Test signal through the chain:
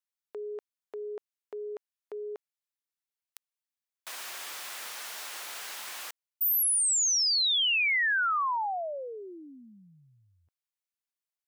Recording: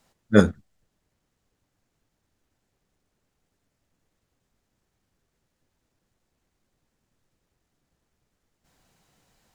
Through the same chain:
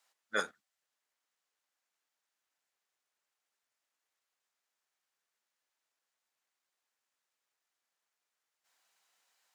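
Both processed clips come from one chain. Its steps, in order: high-pass 1 kHz 12 dB/octave; trim -6 dB

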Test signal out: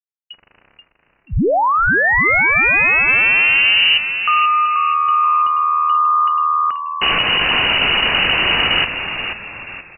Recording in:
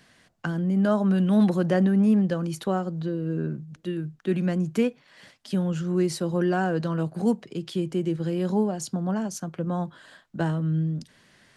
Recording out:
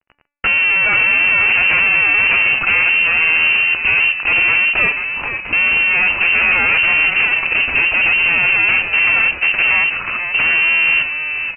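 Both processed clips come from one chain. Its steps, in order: fuzz box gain 46 dB, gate -49 dBFS; de-hum 290.6 Hz, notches 36; frequency inversion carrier 2.9 kHz; on a send: frequency-shifting echo 482 ms, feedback 39%, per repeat -78 Hz, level -8 dB

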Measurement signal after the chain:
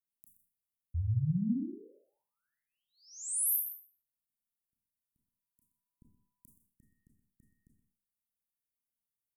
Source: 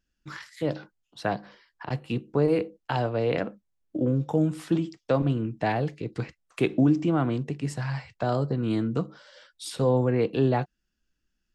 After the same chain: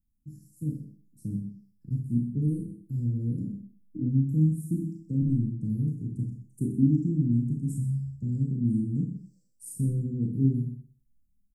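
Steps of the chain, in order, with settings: inverse Chebyshev band-stop 670–3700 Hz, stop band 60 dB; on a send: delay 125 ms -12 dB; on the sum: Schroeder reverb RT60 0.41 s, combs from 26 ms, DRR 0 dB; trim +1.5 dB

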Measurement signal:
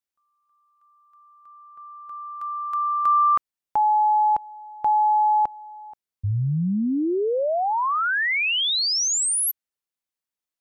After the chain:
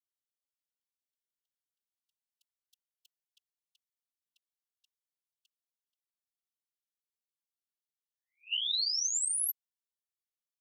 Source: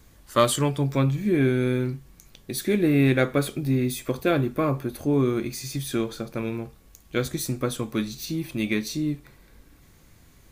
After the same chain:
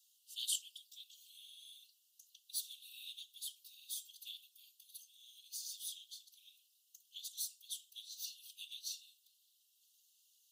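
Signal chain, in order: Chebyshev high-pass 2.8 kHz, order 10; whisper effect; trim -8.5 dB

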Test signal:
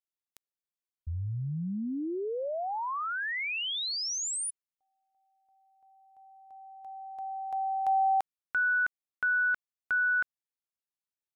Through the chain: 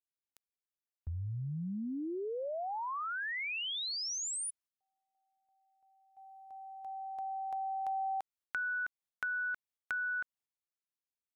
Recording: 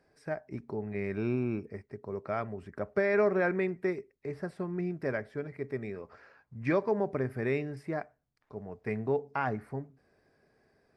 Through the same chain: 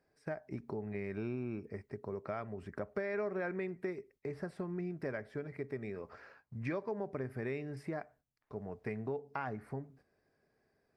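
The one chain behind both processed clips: gate -59 dBFS, range -9 dB; compression 3:1, threshold -39 dBFS; trim +1 dB

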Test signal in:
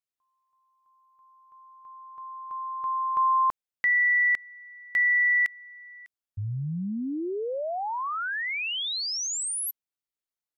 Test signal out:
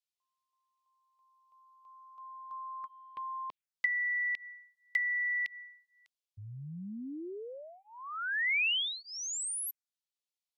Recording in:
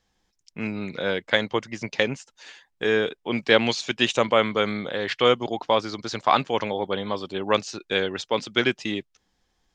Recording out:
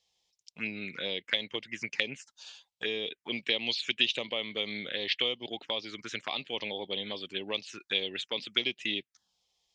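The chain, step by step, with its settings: compression 4:1, threshold -23 dBFS; touch-sensitive phaser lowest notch 260 Hz, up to 1.5 kHz, full sweep at -24.5 dBFS; frequency weighting D; trim -7.5 dB

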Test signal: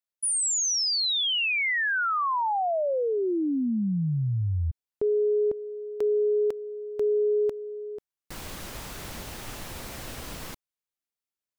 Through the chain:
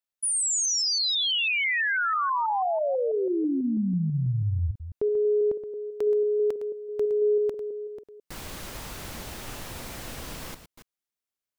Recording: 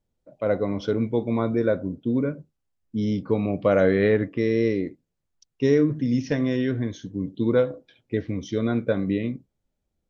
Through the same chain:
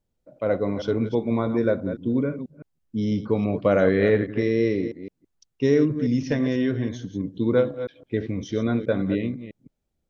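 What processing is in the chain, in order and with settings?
chunks repeated in reverse 164 ms, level -10.5 dB

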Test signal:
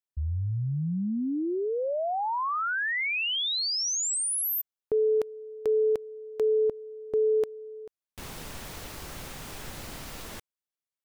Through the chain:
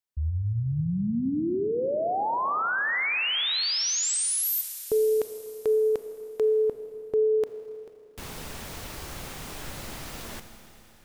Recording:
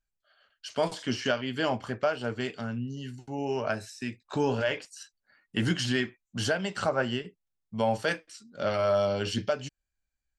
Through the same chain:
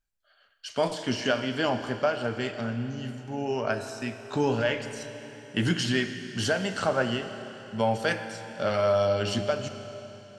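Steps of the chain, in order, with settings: Schroeder reverb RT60 3.5 s, combs from 27 ms, DRR 8.5 dB; trim +1.5 dB

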